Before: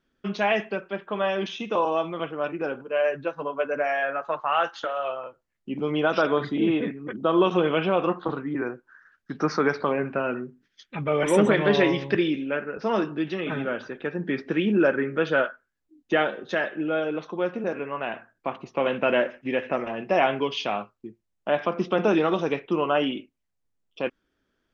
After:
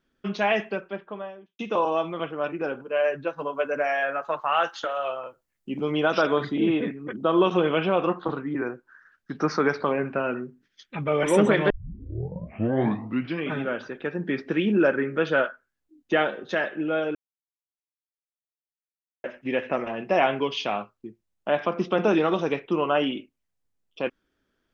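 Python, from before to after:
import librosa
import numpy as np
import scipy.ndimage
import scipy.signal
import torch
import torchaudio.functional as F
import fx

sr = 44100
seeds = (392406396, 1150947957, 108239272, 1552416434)

y = fx.studio_fade_out(x, sr, start_s=0.68, length_s=0.91)
y = fx.high_shelf(y, sr, hz=6600.0, db=9.5, at=(3.38, 6.45))
y = fx.edit(y, sr, fx.tape_start(start_s=11.7, length_s=1.85),
    fx.silence(start_s=17.15, length_s=2.09), tone=tone)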